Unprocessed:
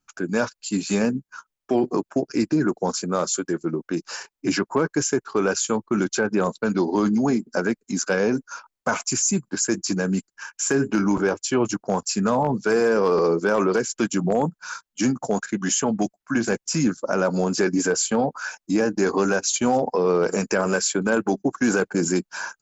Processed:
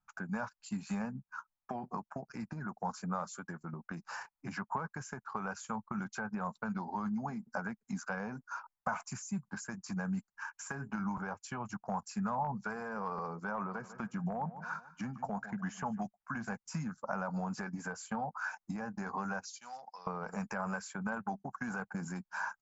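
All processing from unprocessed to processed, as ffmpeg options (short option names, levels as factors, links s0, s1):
-filter_complex "[0:a]asettb=1/sr,asplit=3[s0][s1][s2];[s0]atrim=end=13.514[s3];[s1]atrim=start=13.51:end=15.99,asetpts=PTS-STARTPTS,afade=t=in:d=0.004:c=qsin,afade=t=out:st=2.476:d=0.004:c=qsin,lowpass=f=2400:p=1,aecho=1:1:149|298|447:0.126|0.0529|0.0222,atrim=end_sample=109368[s4];[s2]atrim=start=15.986[s5];[s3][s4]acrossfade=d=0.004:c1=hsin:c2=qsin[s6];[s6][s5]acrossfade=d=0.004:c1=qsin:c2=hsin,asettb=1/sr,asplit=3[s7][s8][s9];[s7]atrim=end=19.454[s10];[s8]atrim=start=19.45:end=20.07,asetpts=PTS-STARTPTS,afade=t=in:d=0.004:c=qsin,afade=t=out:st=0.616:d=0.004:c=qsin,bandpass=f=5000:t=q:w=3,acontrast=29[s11];[s9]atrim=start=20.066[s12];[s10][s11]acrossfade=d=0.004:c1=hsin:c2=qsin[s13];[s13][s12]acrossfade=d=0.004:c1=qsin:c2=hsin,acompressor=threshold=0.0501:ratio=6,firequalizer=gain_entry='entry(210,0);entry(310,-19);entry(800,5);entry(3200,-13)':delay=0.05:min_phase=1,volume=0.562"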